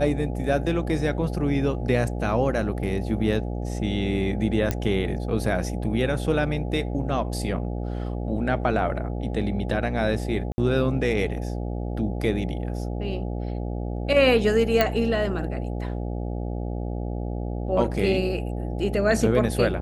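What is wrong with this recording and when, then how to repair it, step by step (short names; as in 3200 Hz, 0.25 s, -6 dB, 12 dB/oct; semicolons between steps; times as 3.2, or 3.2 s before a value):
buzz 60 Hz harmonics 14 -29 dBFS
4.71 pop -10 dBFS
10.52–10.58 gap 60 ms
14.81 pop -6 dBFS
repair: de-click; de-hum 60 Hz, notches 14; interpolate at 10.52, 60 ms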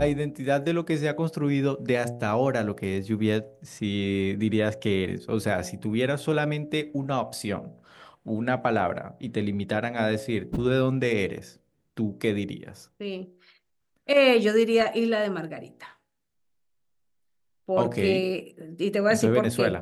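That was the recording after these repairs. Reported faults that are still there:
none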